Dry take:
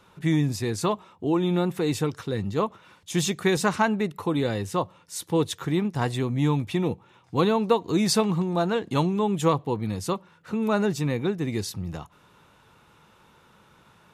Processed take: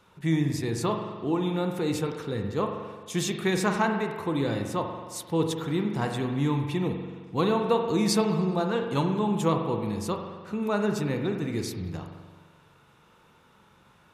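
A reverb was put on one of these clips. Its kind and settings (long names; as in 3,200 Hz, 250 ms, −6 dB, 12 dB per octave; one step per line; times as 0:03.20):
spring reverb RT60 1.5 s, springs 43 ms, chirp 60 ms, DRR 4 dB
level −3.5 dB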